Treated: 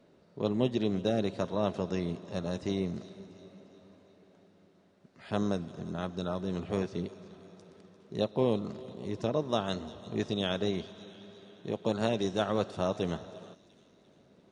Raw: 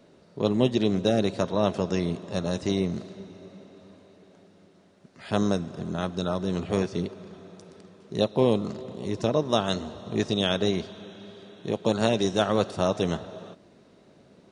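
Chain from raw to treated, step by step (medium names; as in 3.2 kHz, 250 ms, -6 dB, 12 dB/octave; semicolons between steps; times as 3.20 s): treble shelf 5.3 kHz -7 dB; feedback echo behind a high-pass 347 ms, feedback 50%, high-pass 3.8 kHz, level -13 dB; trim -6 dB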